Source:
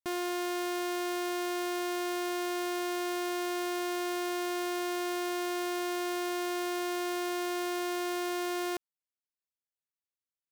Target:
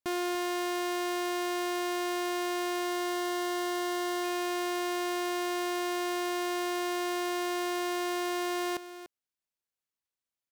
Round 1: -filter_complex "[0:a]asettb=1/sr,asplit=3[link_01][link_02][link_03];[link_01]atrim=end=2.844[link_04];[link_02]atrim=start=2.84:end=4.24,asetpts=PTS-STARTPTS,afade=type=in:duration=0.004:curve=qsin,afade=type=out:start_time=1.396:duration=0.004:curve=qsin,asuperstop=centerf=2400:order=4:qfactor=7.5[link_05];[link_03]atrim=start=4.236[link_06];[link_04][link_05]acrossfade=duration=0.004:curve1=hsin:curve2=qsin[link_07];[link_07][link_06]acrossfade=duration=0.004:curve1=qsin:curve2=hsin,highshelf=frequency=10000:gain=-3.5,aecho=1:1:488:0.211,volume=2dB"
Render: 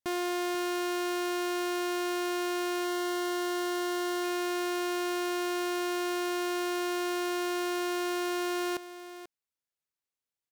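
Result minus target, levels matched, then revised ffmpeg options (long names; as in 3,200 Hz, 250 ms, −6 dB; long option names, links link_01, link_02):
echo 196 ms late
-filter_complex "[0:a]asettb=1/sr,asplit=3[link_01][link_02][link_03];[link_01]atrim=end=2.844[link_04];[link_02]atrim=start=2.84:end=4.24,asetpts=PTS-STARTPTS,afade=type=in:duration=0.004:curve=qsin,afade=type=out:start_time=1.396:duration=0.004:curve=qsin,asuperstop=centerf=2400:order=4:qfactor=7.5[link_05];[link_03]atrim=start=4.236[link_06];[link_04][link_05]acrossfade=duration=0.004:curve1=hsin:curve2=qsin[link_07];[link_07][link_06]acrossfade=duration=0.004:curve1=qsin:curve2=hsin,highshelf=frequency=10000:gain=-3.5,aecho=1:1:292:0.211,volume=2dB"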